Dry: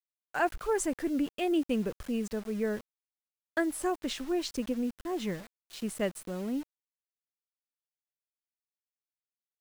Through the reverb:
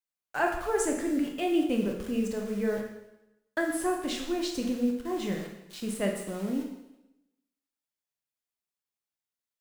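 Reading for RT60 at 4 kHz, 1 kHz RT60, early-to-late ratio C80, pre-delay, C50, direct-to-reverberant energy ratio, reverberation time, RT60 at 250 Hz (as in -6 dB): 0.90 s, 0.90 s, 7.5 dB, 7 ms, 5.0 dB, 1.5 dB, 0.90 s, 0.90 s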